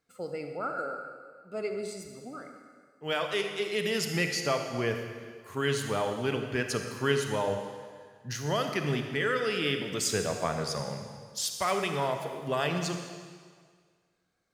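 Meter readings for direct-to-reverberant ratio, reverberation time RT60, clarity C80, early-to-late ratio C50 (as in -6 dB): 5.0 dB, 1.8 s, 6.5 dB, 5.5 dB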